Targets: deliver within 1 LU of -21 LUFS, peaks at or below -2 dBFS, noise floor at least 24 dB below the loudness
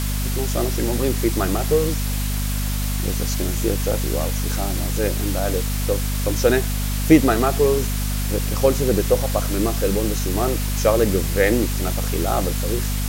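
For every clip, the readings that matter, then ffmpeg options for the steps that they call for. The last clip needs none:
hum 50 Hz; highest harmonic 250 Hz; hum level -21 dBFS; noise floor -23 dBFS; noise floor target -45 dBFS; loudness -21.0 LUFS; peak level -1.5 dBFS; loudness target -21.0 LUFS
-> -af "bandreject=f=50:t=h:w=6,bandreject=f=100:t=h:w=6,bandreject=f=150:t=h:w=6,bandreject=f=200:t=h:w=6,bandreject=f=250:t=h:w=6"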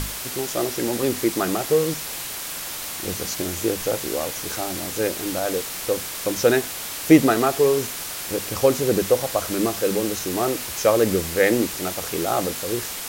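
hum not found; noise floor -32 dBFS; noise floor target -47 dBFS
-> -af "afftdn=nr=15:nf=-32"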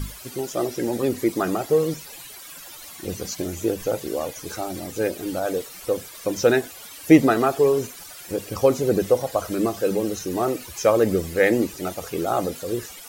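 noise floor -41 dBFS; noise floor target -47 dBFS
-> -af "afftdn=nr=6:nf=-41"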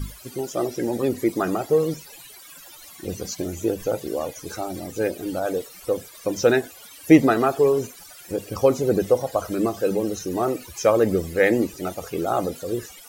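noise floor -45 dBFS; noise floor target -47 dBFS
-> -af "afftdn=nr=6:nf=-45"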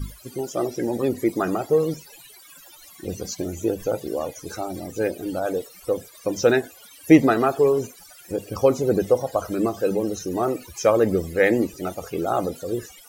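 noise floor -48 dBFS; loudness -23.5 LUFS; peak level -2.0 dBFS; loudness target -21.0 LUFS
-> -af "volume=1.33,alimiter=limit=0.794:level=0:latency=1"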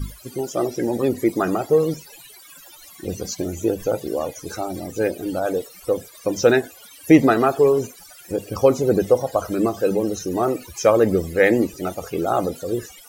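loudness -21.0 LUFS; peak level -2.0 dBFS; noise floor -45 dBFS

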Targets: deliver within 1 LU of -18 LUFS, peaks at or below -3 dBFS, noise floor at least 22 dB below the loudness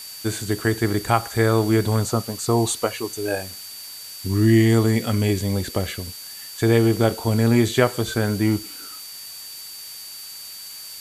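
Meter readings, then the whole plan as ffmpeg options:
steady tone 4.6 kHz; tone level -38 dBFS; noise floor -38 dBFS; noise floor target -43 dBFS; loudness -21.0 LUFS; peak level -2.5 dBFS; loudness target -18.0 LUFS
-> -af "bandreject=f=4600:w=30"
-af "afftdn=nr=6:nf=-38"
-af "volume=1.41,alimiter=limit=0.708:level=0:latency=1"

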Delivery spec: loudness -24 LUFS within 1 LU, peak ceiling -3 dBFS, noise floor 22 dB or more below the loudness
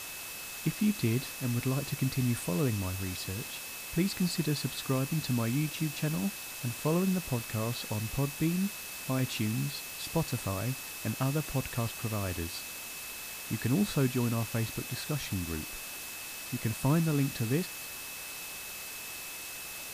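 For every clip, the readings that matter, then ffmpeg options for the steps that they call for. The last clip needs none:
steady tone 2.6 kHz; tone level -46 dBFS; noise floor -42 dBFS; noise floor target -55 dBFS; loudness -33.0 LUFS; peak level -15.5 dBFS; loudness target -24.0 LUFS
-> -af "bandreject=f=2600:w=30"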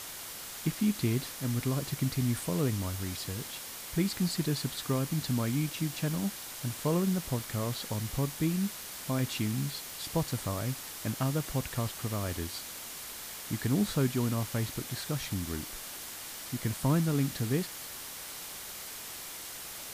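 steady tone not found; noise floor -43 dBFS; noise floor target -55 dBFS
-> -af "afftdn=nr=12:nf=-43"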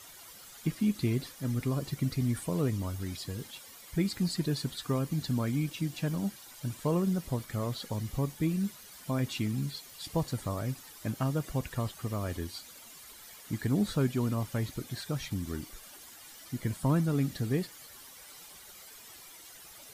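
noise floor -51 dBFS; noise floor target -55 dBFS
-> -af "afftdn=nr=6:nf=-51"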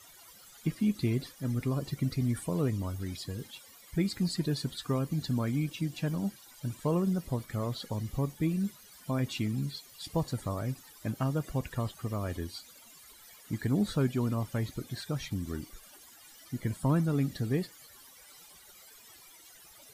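noise floor -55 dBFS; loudness -33.0 LUFS; peak level -16.0 dBFS; loudness target -24.0 LUFS
-> -af "volume=2.82"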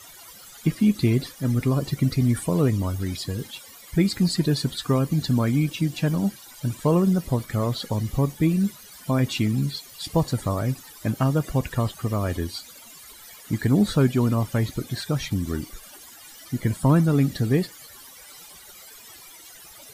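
loudness -24.0 LUFS; peak level -7.0 dBFS; noise floor -46 dBFS

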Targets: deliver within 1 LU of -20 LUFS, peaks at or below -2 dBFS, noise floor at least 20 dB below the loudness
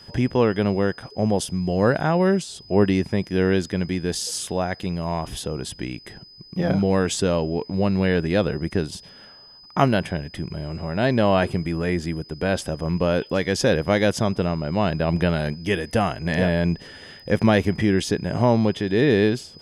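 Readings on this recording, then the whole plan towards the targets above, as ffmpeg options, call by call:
steady tone 5 kHz; tone level -45 dBFS; loudness -22.5 LUFS; peak level -5.0 dBFS; loudness target -20.0 LUFS
-> -af "bandreject=f=5000:w=30"
-af "volume=1.33"

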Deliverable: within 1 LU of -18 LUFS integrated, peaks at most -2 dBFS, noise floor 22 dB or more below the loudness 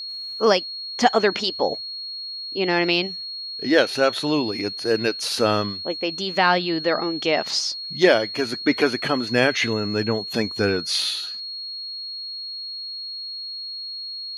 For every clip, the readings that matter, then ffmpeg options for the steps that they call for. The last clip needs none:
steady tone 4.3 kHz; tone level -30 dBFS; loudness -22.5 LUFS; peak level -2.5 dBFS; loudness target -18.0 LUFS
-> -af "bandreject=f=4300:w=30"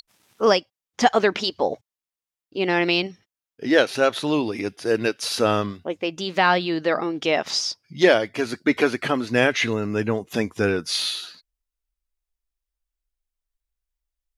steady tone not found; loudness -22.0 LUFS; peak level -3.0 dBFS; loudness target -18.0 LUFS
-> -af "volume=1.58,alimiter=limit=0.794:level=0:latency=1"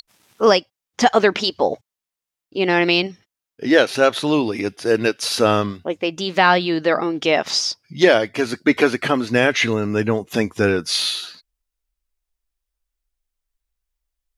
loudness -18.5 LUFS; peak level -2.0 dBFS; noise floor -87 dBFS

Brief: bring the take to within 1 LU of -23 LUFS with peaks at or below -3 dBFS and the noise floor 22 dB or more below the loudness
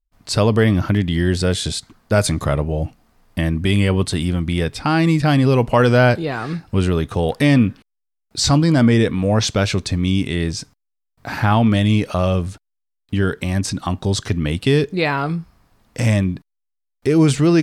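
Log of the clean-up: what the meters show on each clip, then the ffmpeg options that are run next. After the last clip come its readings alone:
loudness -18.0 LUFS; peak level -4.0 dBFS; loudness target -23.0 LUFS
-> -af "volume=0.562"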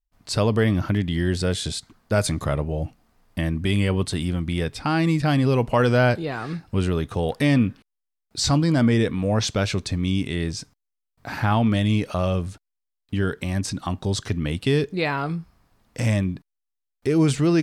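loudness -23.0 LUFS; peak level -9.0 dBFS; noise floor -81 dBFS

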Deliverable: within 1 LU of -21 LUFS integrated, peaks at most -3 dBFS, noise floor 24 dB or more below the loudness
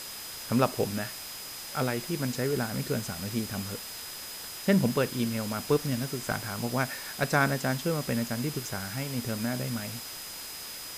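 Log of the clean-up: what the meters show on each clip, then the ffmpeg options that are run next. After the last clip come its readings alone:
steady tone 5 kHz; tone level -44 dBFS; noise floor -41 dBFS; noise floor target -55 dBFS; loudness -30.5 LUFS; peak level -11.0 dBFS; loudness target -21.0 LUFS
-> -af "bandreject=f=5000:w=30"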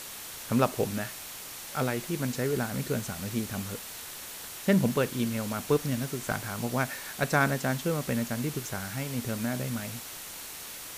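steady tone not found; noise floor -42 dBFS; noise floor target -55 dBFS
-> -af "afftdn=nr=13:nf=-42"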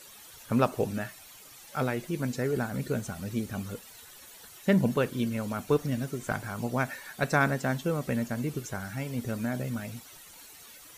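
noise floor -51 dBFS; noise floor target -55 dBFS
-> -af "afftdn=nr=6:nf=-51"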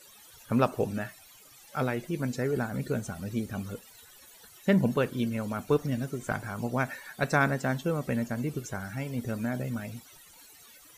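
noise floor -54 dBFS; noise floor target -55 dBFS
-> -af "afftdn=nr=6:nf=-54"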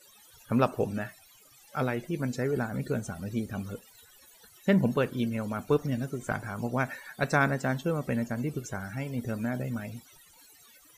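noise floor -58 dBFS; loudness -31.0 LUFS; peak level -11.5 dBFS; loudness target -21.0 LUFS
-> -af "volume=3.16,alimiter=limit=0.708:level=0:latency=1"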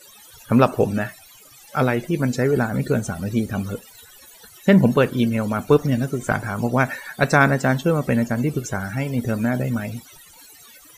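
loudness -21.0 LUFS; peak level -3.0 dBFS; noise floor -48 dBFS

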